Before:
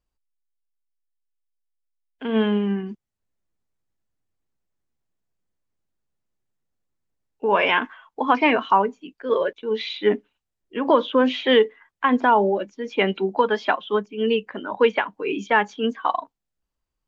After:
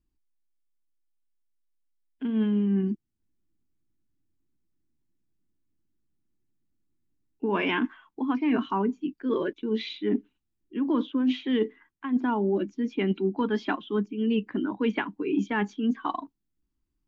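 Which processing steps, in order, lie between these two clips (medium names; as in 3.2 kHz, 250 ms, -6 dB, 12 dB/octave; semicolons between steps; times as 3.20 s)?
resonant low shelf 410 Hz +9 dB, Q 3; reverse; compression 16:1, threshold -16 dBFS, peak gain reduction 15.5 dB; reverse; trim -5.5 dB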